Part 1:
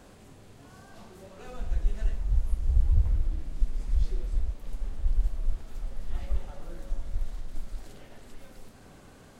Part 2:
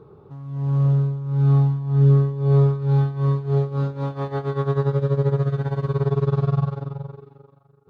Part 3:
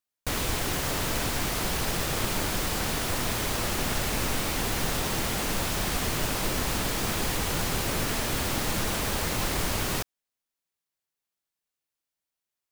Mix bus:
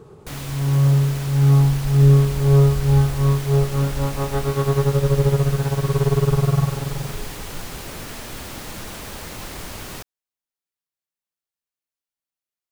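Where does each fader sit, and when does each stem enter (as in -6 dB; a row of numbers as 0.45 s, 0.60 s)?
-4.5 dB, +2.5 dB, -5.5 dB; 0.00 s, 0.00 s, 0.00 s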